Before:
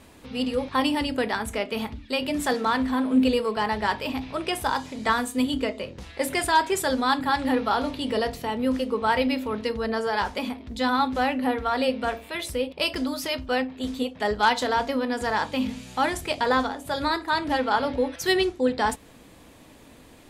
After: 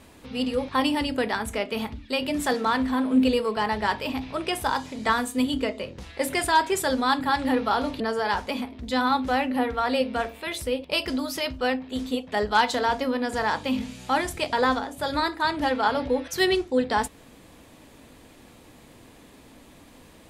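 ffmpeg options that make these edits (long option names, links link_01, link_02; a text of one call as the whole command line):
ffmpeg -i in.wav -filter_complex "[0:a]asplit=2[link_01][link_02];[link_01]atrim=end=8.002[link_03];[link_02]atrim=start=9.878[link_04];[link_03][link_04]acrossfade=duration=0.004:curve1=hsin:curve2=hsin" out.wav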